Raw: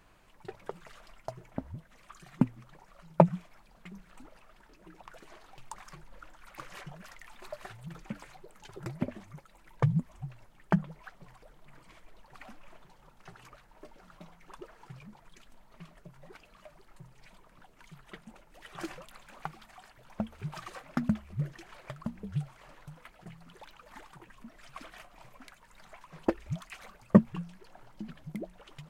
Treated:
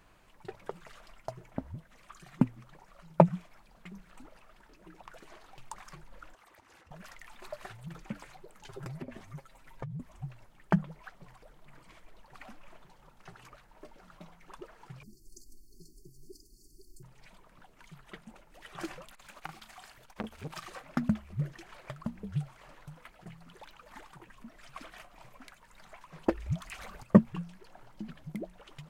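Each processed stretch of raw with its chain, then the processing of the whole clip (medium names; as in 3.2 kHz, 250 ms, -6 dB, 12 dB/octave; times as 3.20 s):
6.34–6.91 s: high-pass 210 Hz + compression 16:1, threshold -55 dBFS + frequency shift -240 Hz
8.66–10.00 s: comb 7.5 ms, depth 66% + compression 16:1, threshold -36 dBFS
15.03–17.03 s: brick-wall FIR band-stop 430–4300 Hz + treble shelf 3.4 kHz +9 dB + comb 2.8 ms, depth 69%
19.12–20.68 s: treble shelf 2 kHz +7.5 dB + doubling 37 ms -10 dB + transformer saturation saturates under 1.3 kHz
26.31–27.03 s: peaking EQ 64 Hz +13 dB 1.1 oct + upward compressor, threshold -37 dBFS
whole clip: none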